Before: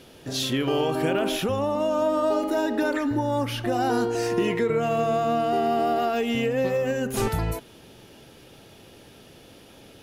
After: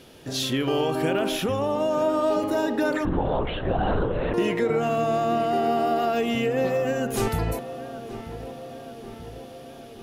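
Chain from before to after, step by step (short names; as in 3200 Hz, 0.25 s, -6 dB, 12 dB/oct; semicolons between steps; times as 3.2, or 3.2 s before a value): darkening echo 0.931 s, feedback 67%, low-pass 2000 Hz, level -13 dB; 3.05–4.34 LPC vocoder at 8 kHz whisper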